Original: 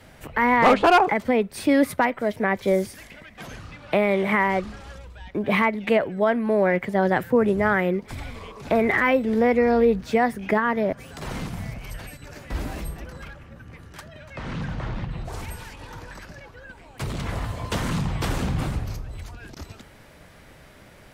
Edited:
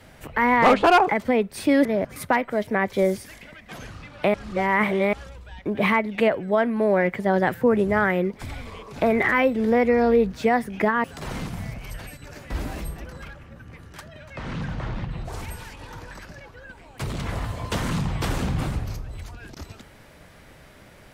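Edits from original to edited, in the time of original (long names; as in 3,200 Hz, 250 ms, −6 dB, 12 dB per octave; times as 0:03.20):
0:04.03–0:04.82: reverse
0:10.73–0:11.04: move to 0:01.85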